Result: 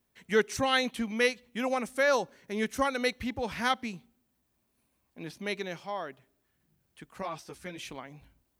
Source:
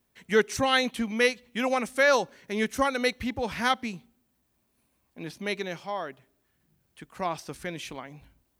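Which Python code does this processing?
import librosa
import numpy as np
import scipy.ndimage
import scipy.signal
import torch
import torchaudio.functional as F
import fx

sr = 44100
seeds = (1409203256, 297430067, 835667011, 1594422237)

y = fx.peak_eq(x, sr, hz=2900.0, db=-3.0, octaves=2.3, at=(1.45, 2.63))
y = fx.ensemble(y, sr, at=(7.22, 7.78))
y = y * 10.0 ** (-3.0 / 20.0)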